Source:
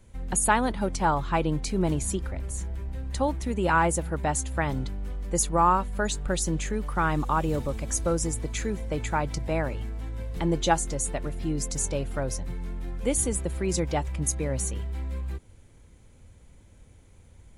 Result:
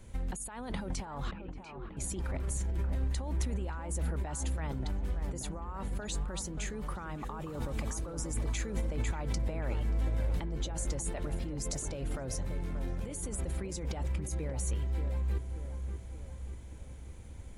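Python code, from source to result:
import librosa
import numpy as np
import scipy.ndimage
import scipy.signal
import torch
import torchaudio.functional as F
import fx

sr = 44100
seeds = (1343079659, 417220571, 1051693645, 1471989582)

p1 = fx.over_compress(x, sr, threshold_db=-34.0, ratio=-1.0)
p2 = fx.double_bandpass(p1, sr, hz=980.0, octaves=2.8, at=(1.31, 1.97))
p3 = p2 + fx.echo_wet_lowpass(p2, sr, ms=582, feedback_pct=54, hz=1700.0, wet_db=-7.5, dry=0)
y = p3 * 10.0 ** (-2.5 / 20.0)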